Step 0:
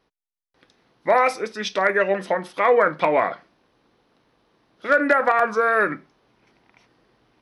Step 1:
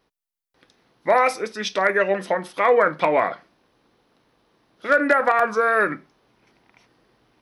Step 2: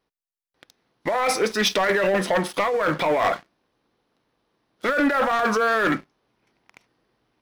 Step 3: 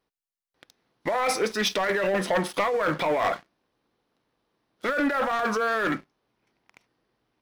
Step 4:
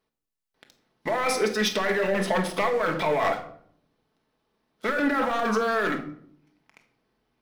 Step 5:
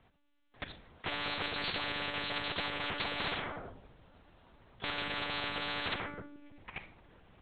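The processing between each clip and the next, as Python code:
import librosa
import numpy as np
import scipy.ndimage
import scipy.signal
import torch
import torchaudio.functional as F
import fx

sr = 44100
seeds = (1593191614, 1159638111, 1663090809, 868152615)

y1 = fx.high_shelf(x, sr, hz=9600.0, db=7.5)
y2 = fx.over_compress(y1, sr, threshold_db=-23.0, ratio=-1.0)
y2 = fx.leveller(y2, sr, passes=3)
y2 = y2 * 10.0 ** (-6.5 / 20.0)
y3 = fx.rider(y2, sr, range_db=10, speed_s=0.5)
y3 = y3 * 10.0 ** (-3.0 / 20.0)
y4 = fx.room_shoebox(y3, sr, seeds[0], volume_m3=1000.0, walls='furnished', distance_m=1.5)
y4 = y4 * 10.0 ** (-1.0 / 20.0)
y5 = fx.lpc_monotone(y4, sr, seeds[1], pitch_hz=290.0, order=8)
y5 = fx.spectral_comp(y5, sr, ratio=10.0)
y5 = y5 * 10.0 ** (-8.0 / 20.0)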